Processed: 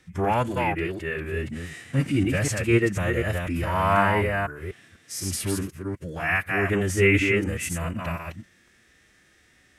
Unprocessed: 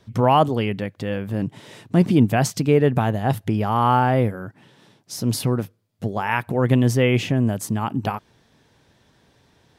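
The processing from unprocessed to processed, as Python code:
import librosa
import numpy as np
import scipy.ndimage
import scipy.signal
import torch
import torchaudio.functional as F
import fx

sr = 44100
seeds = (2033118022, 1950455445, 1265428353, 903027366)

y = fx.reverse_delay(x, sr, ms=248, wet_db=-3.5)
y = fx.graphic_eq(y, sr, hz=(125, 250, 500, 1000, 2000, 4000, 8000), db=(-8, -5, -4, -8, 11, -6, 8))
y = fx.pitch_keep_formants(y, sr, semitones=-4.0)
y = fx.hpss(y, sr, part='percussive', gain_db=-12)
y = F.gain(torch.from_numpy(y), 3.0).numpy()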